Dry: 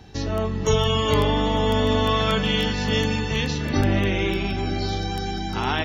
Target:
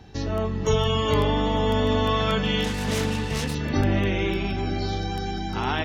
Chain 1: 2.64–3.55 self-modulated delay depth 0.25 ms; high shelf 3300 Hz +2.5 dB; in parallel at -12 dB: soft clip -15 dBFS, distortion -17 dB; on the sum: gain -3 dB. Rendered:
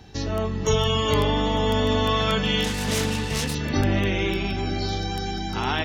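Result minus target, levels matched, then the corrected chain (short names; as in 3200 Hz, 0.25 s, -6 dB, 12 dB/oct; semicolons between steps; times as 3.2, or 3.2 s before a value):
8000 Hz band +4.5 dB
2.64–3.55 self-modulated delay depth 0.25 ms; high shelf 3300 Hz -4 dB; in parallel at -12 dB: soft clip -15 dBFS, distortion -17 dB; on the sum: gain -3 dB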